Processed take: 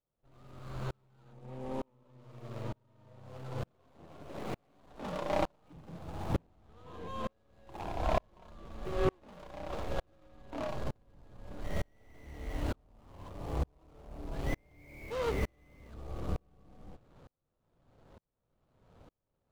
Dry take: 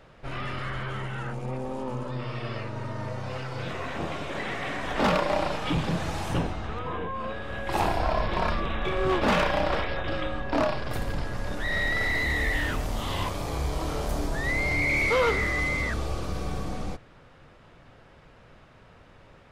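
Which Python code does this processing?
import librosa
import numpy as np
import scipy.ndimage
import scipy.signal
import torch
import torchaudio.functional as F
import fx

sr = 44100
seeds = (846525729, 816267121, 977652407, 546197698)

y = scipy.signal.medfilt(x, 25)
y = fx.tremolo_decay(y, sr, direction='swelling', hz=1.1, depth_db=40)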